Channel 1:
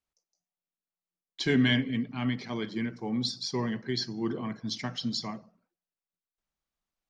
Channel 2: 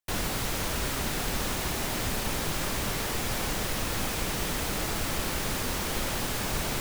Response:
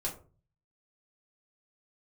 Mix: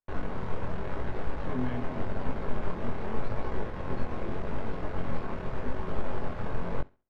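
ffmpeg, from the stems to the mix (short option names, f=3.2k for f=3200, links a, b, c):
-filter_complex "[0:a]volume=-7.5dB[a];[1:a]tremolo=f=95:d=0.571,aeval=exprs='clip(val(0),-1,0.00944)':c=same,volume=3dB,asplit=3[b][c][d];[c]volume=-5.5dB[e];[d]volume=-19dB[f];[2:a]atrim=start_sample=2205[g];[e][g]afir=irnorm=-1:irlink=0[h];[f]aecho=0:1:68|136|204|272:1|0.28|0.0784|0.022[i];[a][b][h][i]amix=inputs=4:normalize=0,lowpass=1.2k,flanger=delay=18.5:depth=6.6:speed=0.85"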